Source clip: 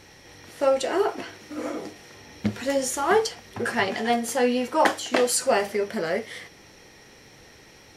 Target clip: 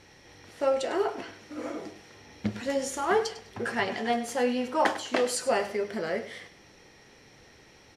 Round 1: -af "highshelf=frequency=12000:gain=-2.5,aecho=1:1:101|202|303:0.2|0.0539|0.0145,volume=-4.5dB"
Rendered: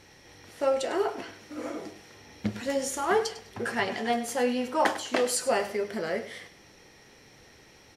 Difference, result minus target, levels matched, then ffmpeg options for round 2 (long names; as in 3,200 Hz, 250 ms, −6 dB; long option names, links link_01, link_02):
8,000 Hz band +2.5 dB
-af "highshelf=frequency=12000:gain=-14.5,aecho=1:1:101|202|303:0.2|0.0539|0.0145,volume=-4.5dB"